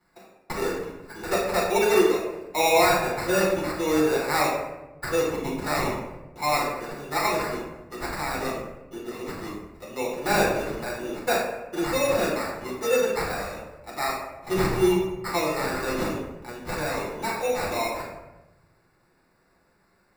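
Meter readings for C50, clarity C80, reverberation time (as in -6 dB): 2.0 dB, 5.0 dB, 1.0 s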